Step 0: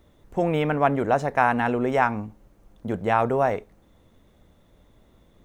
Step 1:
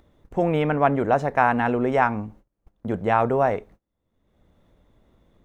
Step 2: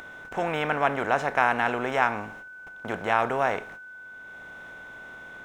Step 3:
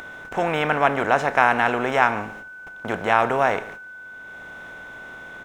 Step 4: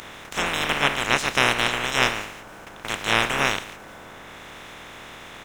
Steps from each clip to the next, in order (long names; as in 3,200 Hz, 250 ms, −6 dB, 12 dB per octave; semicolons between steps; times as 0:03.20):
noise gate −47 dBFS, range −28 dB; upward compression, threshold −40 dBFS; high-shelf EQ 4,200 Hz −8 dB; level +1.5 dB
compressor on every frequency bin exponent 0.6; steady tone 1,500 Hz −39 dBFS; tilt shelving filter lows −7.5 dB, about 900 Hz; level −5.5 dB
single-tap delay 145 ms −19 dB; level +5 dB
ceiling on every frequency bin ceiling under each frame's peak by 30 dB; level −2 dB